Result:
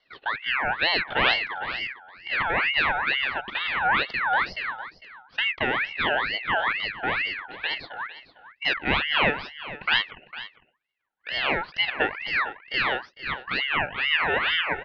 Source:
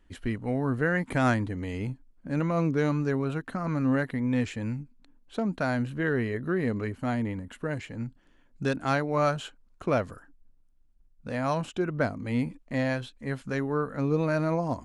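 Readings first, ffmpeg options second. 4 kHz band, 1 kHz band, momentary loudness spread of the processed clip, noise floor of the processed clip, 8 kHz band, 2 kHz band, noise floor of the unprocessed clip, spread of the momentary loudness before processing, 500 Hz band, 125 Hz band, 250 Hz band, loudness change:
+19.5 dB, +6.5 dB, 12 LU, -68 dBFS, under -10 dB, +12.0 dB, -61 dBFS, 10 LU, -4.0 dB, -13.5 dB, -11.5 dB, +4.5 dB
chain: -af "aecho=1:1:453:0.178,highpass=f=170:t=q:w=0.5412,highpass=f=170:t=q:w=1.307,lowpass=f=2.7k:t=q:w=0.5176,lowpass=f=2.7k:t=q:w=0.7071,lowpass=f=2.7k:t=q:w=1.932,afreqshift=75,aeval=exprs='val(0)*sin(2*PI*1800*n/s+1800*0.4/2.2*sin(2*PI*2.2*n/s))':c=same,volume=6dB"

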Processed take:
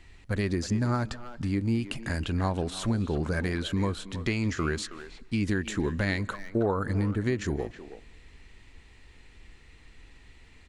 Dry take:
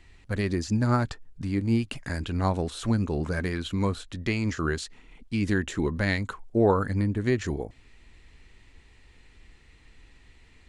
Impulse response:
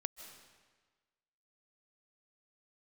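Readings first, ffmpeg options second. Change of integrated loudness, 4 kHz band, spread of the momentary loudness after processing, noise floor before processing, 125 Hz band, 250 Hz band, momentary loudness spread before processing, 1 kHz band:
-2.0 dB, 0.0 dB, 7 LU, -56 dBFS, -1.5 dB, -2.0 dB, 9 LU, -3.5 dB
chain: -filter_complex "[0:a]acompressor=threshold=-26dB:ratio=3,asplit=2[a][b];[b]adelay=320,highpass=300,lowpass=3.4k,asoftclip=type=hard:threshold=-27dB,volume=-11dB[c];[a][c]amix=inputs=2:normalize=0,asplit=2[d][e];[1:a]atrim=start_sample=2205[f];[e][f]afir=irnorm=-1:irlink=0,volume=-12dB[g];[d][g]amix=inputs=2:normalize=0"

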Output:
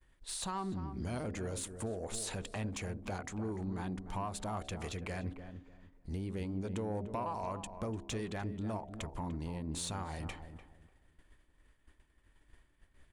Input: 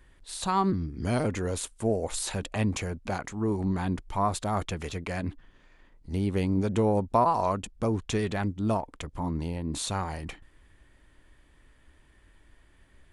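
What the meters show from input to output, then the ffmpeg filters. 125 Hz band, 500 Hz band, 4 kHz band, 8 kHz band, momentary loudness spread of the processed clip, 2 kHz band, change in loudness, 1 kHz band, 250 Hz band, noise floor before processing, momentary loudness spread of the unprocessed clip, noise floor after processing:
-9.5 dB, -11.5 dB, -7.0 dB, -6.0 dB, 6 LU, -8.5 dB, -10.5 dB, -12.5 dB, -10.5 dB, -60 dBFS, 10 LU, -70 dBFS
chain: -filter_complex "[0:a]bandreject=f=67.83:t=h:w=4,bandreject=f=135.66:t=h:w=4,bandreject=f=203.49:t=h:w=4,bandreject=f=271.32:t=h:w=4,bandreject=f=339.15:t=h:w=4,bandreject=f=406.98:t=h:w=4,bandreject=f=474.81:t=h:w=4,bandreject=f=542.64:t=h:w=4,bandreject=f=610.47:t=h:w=4,bandreject=f=678.3:t=h:w=4,bandreject=f=746.13:t=h:w=4,agate=range=-33dB:threshold=-49dB:ratio=3:detection=peak,equalizer=f=8.6k:w=1.5:g=2,acompressor=threshold=-38dB:ratio=3,asoftclip=type=tanh:threshold=-29dB,asplit=2[a][b];[b]adelay=297,lowpass=f=1.2k:p=1,volume=-9dB,asplit=2[c][d];[d]adelay=297,lowpass=f=1.2k:p=1,volume=0.26,asplit=2[e][f];[f]adelay=297,lowpass=f=1.2k:p=1,volume=0.26[g];[a][c][e][g]amix=inputs=4:normalize=0"

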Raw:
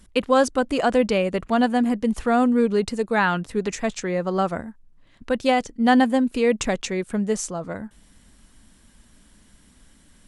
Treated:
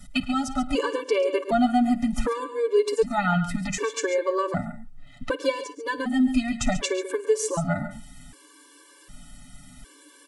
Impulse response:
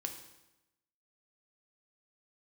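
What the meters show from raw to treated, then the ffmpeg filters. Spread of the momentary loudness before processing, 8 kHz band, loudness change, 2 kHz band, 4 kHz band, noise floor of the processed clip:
9 LU, +0.5 dB, -3.5 dB, -4.5 dB, -2.0 dB, -53 dBFS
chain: -filter_complex "[0:a]acrossover=split=140[a][b];[b]acompressor=threshold=-28dB:ratio=5[c];[a][c]amix=inputs=2:normalize=0,equalizer=f=1.2k:w=4.7:g=3.5,aecho=1:1:7:0.66,aecho=1:1:53|108|134|139:0.106|0.119|0.119|0.237,afftfilt=real='re*gt(sin(2*PI*0.66*pts/sr)*(1-2*mod(floor(b*sr/1024/300),2)),0)':imag='im*gt(sin(2*PI*0.66*pts/sr)*(1-2*mod(floor(b*sr/1024/300),2)),0)':win_size=1024:overlap=0.75,volume=7.5dB"

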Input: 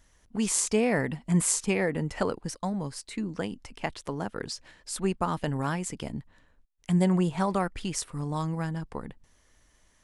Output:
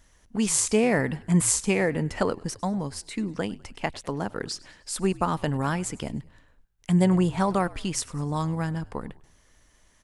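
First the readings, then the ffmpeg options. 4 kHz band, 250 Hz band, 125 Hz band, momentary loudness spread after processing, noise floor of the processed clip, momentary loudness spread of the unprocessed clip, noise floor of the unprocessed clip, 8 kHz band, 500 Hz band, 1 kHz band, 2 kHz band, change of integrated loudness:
+3.0 dB, +3.0 dB, +3.0 dB, 13 LU, -61 dBFS, 13 LU, -65 dBFS, +3.0 dB, +3.0 dB, +3.0 dB, +3.0 dB, +3.0 dB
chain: -filter_complex "[0:a]asplit=4[a][b][c][d];[b]adelay=101,afreqshift=-60,volume=-22dB[e];[c]adelay=202,afreqshift=-120,volume=-28.4dB[f];[d]adelay=303,afreqshift=-180,volume=-34.8dB[g];[a][e][f][g]amix=inputs=4:normalize=0,volume=3dB"

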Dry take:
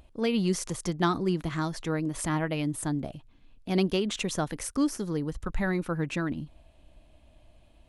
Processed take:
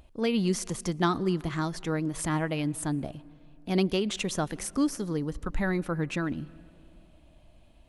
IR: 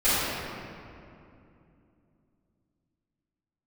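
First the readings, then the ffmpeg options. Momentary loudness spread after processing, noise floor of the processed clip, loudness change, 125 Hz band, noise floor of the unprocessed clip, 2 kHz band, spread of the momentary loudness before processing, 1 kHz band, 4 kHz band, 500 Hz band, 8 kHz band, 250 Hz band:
7 LU, -57 dBFS, 0.0 dB, 0.0 dB, -58 dBFS, 0.0 dB, 7 LU, 0.0 dB, 0.0 dB, 0.0 dB, 0.0 dB, 0.0 dB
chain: -filter_complex "[0:a]asplit=2[a][b];[1:a]atrim=start_sample=2205,adelay=108[c];[b][c]afir=irnorm=-1:irlink=0,volume=-41dB[d];[a][d]amix=inputs=2:normalize=0"

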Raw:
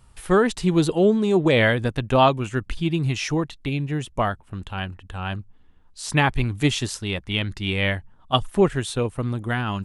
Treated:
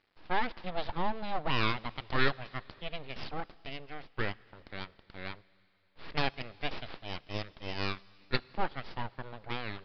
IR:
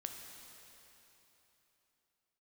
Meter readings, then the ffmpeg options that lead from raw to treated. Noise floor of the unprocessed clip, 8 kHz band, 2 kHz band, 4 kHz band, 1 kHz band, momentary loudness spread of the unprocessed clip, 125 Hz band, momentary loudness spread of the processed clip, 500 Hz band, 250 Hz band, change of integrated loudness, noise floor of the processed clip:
-53 dBFS, under -30 dB, -10.5 dB, -10.5 dB, -10.5 dB, 13 LU, -17.5 dB, 14 LU, -18.0 dB, -19.0 dB, -14.5 dB, -67 dBFS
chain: -filter_complex "[0:a]highpass=350,aeval=exprs='abs(val(0))':c=same,adynamicsmooth=sensitivity=7.5:basefreq=3.9k,acrusher=bits=7:dc=4:mix=0:aa=0.000001,asplit=2[a][b];[1:a]atrim=start_sample=2205,highshelf=f=3.5k:g=9[c];[b][c]afir=irnorm=-1:irlink=0,volume=-16.5dB[d];[a][d]amix=inputs=2:normalize=0,aresample=11025,aresample=44100,volume=-8.5dB"

